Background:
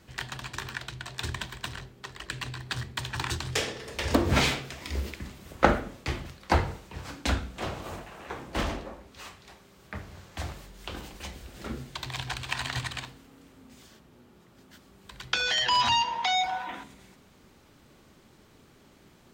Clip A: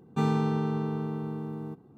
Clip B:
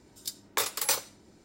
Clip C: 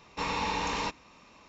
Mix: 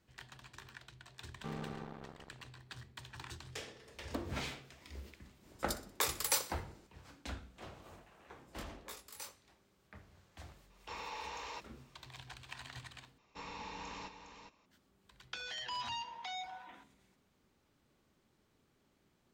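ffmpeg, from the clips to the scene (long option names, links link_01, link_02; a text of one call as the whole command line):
ffmpeg -i bed.wav -i cue0.wav -i cue1.wav -i cue2.wav -filter_complex "[2:a]asplit=2[link_01][link_02];[3:a]asplit=2[link_03][link_04];[0:a]volume=-17dB[link_05];[1:a]acrusher=bits=3:mix=0:aa=0.5[link_06];[link_01]aecho=1:1:62|124|186|248:0.158|0.0697|0.0307|0.0135[link_07];[link_02]flanger=delay=17:depth=7:speed=1.8[link_08];[link_03]highpass=frequency=390:width=0.5412,highpass=frequency=390:width=1.3066[link_09];[link_04]aecho=1:1:409:0.376[link_10];[link_05]asplit=2[link_11][link_12];[link_11]atrim=end=13.184[link_13];[link_10]atrim=end=1.48,asetpts=PTS-STARTPTS,volume=-15.5dB[link_14];[link_12]atrim=start=14.656[link_15];[link_06]atrim=end=1.97,asetpts=PTS-STARTPTS,volume=-18dB,afade=type=in:duration=0.004:curve=hsin,afade=type=out:start_time=1.966:duration=0.004:curve=hsin,adelay=1270[link_16];[link_07]atrim=end=1.44,asetpts=PTS-STARTPTS,volume=-5.5dB,afade=type=in:duration=0.004:curve=hsin,afade=type=out:start_time=1.436:duration=0.004:curve=hsin,adelay=5430[link_17];[link_08]atrim=end=1.44,asetpts=PTS-STARTPTS,volume=-18dB,afade=type=in:duration=0.004:curve=hsin,afade=type=out:start_time=1.436:duration=0.004:curve=hsin,adelay=8310[link_18];[link_09]atrim=end=1.48,asetpts=PTS-STARTPTS,volume=-13dB,afade=type=in:duration=0.004:curve=hsin,afade=type=out:start_time=1.476:duration=0.004:curve=hsin,adelay=10700[link_19];[link_13][link_14]acrossfade=duration=0.004:curve1=hsin:curve2=hsin[link_20];[link_20][link_15]acrossfade=duration=0.004:curve1=hsin:curve2=hsin[link_21];[link_21][link_16][link_17][link_18][link_19]amix=inputs=5:normalize=0" out.wav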